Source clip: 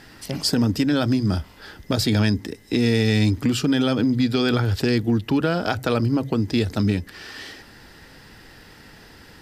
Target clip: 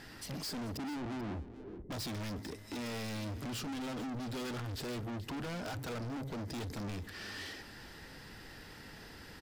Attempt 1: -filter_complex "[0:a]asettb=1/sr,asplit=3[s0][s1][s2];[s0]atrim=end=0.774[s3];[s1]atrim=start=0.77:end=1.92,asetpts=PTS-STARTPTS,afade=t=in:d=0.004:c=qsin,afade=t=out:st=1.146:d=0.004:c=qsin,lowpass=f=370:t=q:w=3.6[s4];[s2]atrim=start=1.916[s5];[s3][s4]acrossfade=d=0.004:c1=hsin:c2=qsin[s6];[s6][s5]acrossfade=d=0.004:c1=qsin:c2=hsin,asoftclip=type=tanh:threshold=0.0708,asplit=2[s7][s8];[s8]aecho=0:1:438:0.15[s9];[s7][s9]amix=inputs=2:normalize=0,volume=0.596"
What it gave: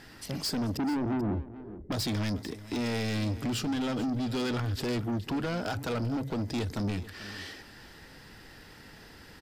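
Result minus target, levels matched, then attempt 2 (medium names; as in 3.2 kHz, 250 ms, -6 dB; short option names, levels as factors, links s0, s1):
saturation: distortion -5 dB
-filter_complex "[0:a]asettb=1/sr,asplit=3[s0][s1][s2];[s0]atrim=end=0.774[s3];[s1]atrim=start=0.77:end=1.92,asetpts=PTS-STARTPTS,afade=t=in:d=0.004:c=qsin,afade=t=out:st=1.146:d=0.004:c=qsin,lowpass=f=370:t=q:w=3.6[s4];[s2]atrim=start=1.916[s5];[s3][s4]acrossfade=d=0.004:c1=hsin:c2=qsin[s6];[s6][s5]acrossfade=d=0.004:c1=qsin:c2=hsin,asoftclip=type=tanh:threshold=0.02,asplit=2[s7][s8];[s8]aecho=0:1:438:0.15[s9];[s7][s9]amix=inputs=2:normalize=0,volume=0.596"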